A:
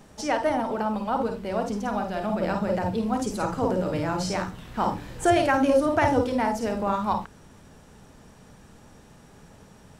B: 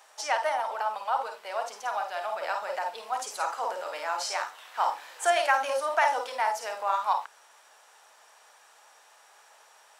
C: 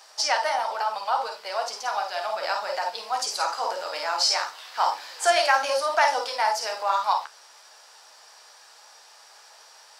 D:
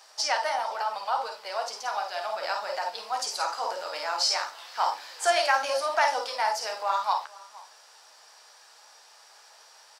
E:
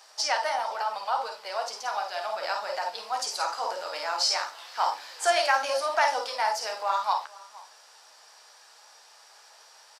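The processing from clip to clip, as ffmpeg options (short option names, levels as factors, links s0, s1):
-af "highpass=f=710:w=0.5412,highpass=f=710:w=1.3066,volume=1.12"
-af "flanger=delay=9.9:depth=5.7:regen=-45:speed=1:shape=triangular,equalizer=f=4800:w=2.5:g=13.5,acontrast=83"
-filter_complex "[0:a]asplit=2[s0][s1];[s1]adelay=466.5,volume=0.0891,highshelf=f=4000:g=-10.5[s2];[s0][s2]amix=inputs=2:normalize=0,volume=0.708"
-af "aresample=32000,aresample=44100"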